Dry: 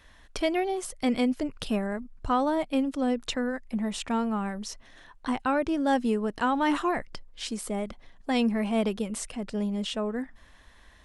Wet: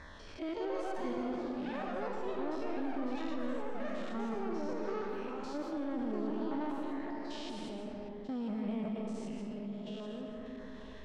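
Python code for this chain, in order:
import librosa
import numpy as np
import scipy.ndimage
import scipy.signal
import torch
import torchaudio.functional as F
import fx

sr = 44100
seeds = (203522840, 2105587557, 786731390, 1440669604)

p1 = fx.spec_steps(x, sr, hold_ms=200)
p2 = fx.low_shelf(p1, sr, hz=74.0, db=-8.5)
p3 = fx.notch(p2, sr, hz=720.0, q=12.0)
p4 = fx.level_steps(p3, sr, step_db=15)
p5 = fx.filter_lfo_notch(p4, sr, shape='saw_down', hz=1.7, low_hz=940.0, high_hz=3100.0, q=1.1)
p6 = 10.0 ** (-30.0 / 20.0) * np.tanh(p5 / 10.0 ** (-30.0 / 20.0))
p7 = p6 + fx.echo_single(p6, sr, ms=940, db=-19.5, dry=0)
p8 = fx.rev_freeverb(p7, sr, rt60_s=2.1, hf_ratio=0.5, predelay_ms=115, drr_db=2.0)
p9 = fx.echo_pitch(p8, sr, ms=272, semitones=6, count=3, db_per_echo=-3.0)
p10 = fx.air_absorb(p9, sr, metres=140.0)
p11 = fx.env_flatten(p10, sr, amount_pct=50)
y = F.gain(torch.from_numpy(p11), -6.0).numpy()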